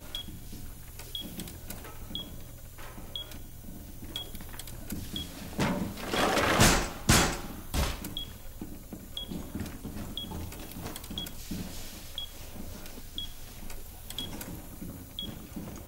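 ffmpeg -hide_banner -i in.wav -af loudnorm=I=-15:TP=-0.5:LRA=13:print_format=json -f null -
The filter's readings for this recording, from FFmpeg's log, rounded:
"input_i" : "-33.7",
"input_tp" : "-11.9",
"input_lra" : "13.6",
"input_thresh" : "-44.4",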